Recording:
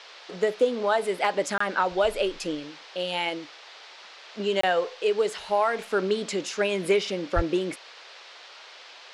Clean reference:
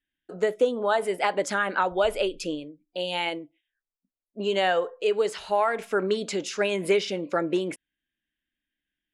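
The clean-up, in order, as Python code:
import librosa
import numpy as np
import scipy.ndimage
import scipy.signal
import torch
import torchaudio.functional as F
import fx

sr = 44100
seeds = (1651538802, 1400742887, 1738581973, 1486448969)

y = fx.fix_declip(x, sr, threshold_db=-11.5)
y = fx.highpass(y, sr, hz=140.0, slope=24, at=(7.35, 7.47), fade=0.02)
y = fx.fix_interpolate(y, sr, at_s=(1.58, 4.61), length_ms=24.0)
y = fx.noise_reduce(y, sr, print_start_s=3.79, print_end_s=4.29, reduce_db=30.0)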